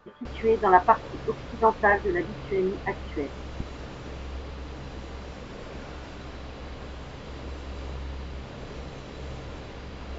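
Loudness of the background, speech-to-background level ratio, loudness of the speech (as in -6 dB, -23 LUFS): -39.5 LUFS, 14.5 dB, -25.0 LUFS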